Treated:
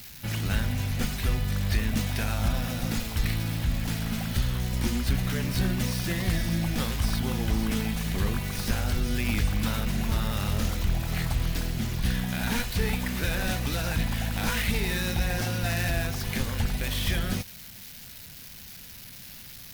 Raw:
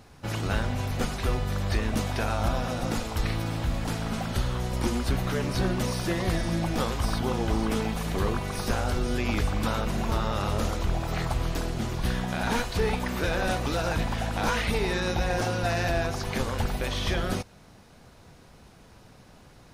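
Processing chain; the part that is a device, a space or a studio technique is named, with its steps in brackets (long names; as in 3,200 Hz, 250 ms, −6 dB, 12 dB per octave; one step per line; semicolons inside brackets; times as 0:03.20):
budget class-D amplifier (gap after every zero crossing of 0.079 ms; spike at every zero crossing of −30 dBFS)
flat-topped bell 640 Hz −8.5 dB 2.4 octaves
level +1.5 dB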